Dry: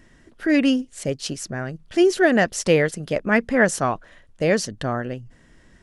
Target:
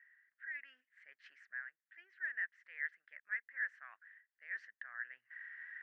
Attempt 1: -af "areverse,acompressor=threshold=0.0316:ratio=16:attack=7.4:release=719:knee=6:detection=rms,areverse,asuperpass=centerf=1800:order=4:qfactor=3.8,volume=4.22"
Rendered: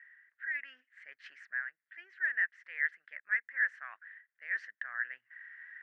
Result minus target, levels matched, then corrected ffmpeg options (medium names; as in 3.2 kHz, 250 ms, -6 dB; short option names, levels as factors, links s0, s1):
compression: peak gain reduction -8.5 dB
-af "areverse,acompressor=threshold=0.0112:ratio=16:attack=7.4:release=719:knee=6:detection=rms,areverse,asuperpass=centerf=1800:order=4:qfactor=3.8,volume=4.22"